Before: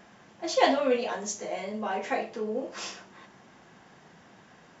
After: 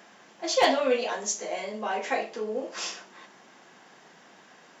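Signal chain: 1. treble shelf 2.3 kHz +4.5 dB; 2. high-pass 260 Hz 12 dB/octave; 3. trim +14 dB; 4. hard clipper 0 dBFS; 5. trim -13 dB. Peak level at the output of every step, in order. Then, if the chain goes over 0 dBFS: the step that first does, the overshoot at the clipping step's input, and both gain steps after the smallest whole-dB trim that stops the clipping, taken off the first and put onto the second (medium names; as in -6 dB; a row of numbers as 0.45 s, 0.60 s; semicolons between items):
-5.5 dBFS, -5.5 dBFS, +8.5 dBFS, 0.0 dBFS, -13.0 dBFS; step 3, 8.5 dB; step 3 +5 dB, step 5 -4 dB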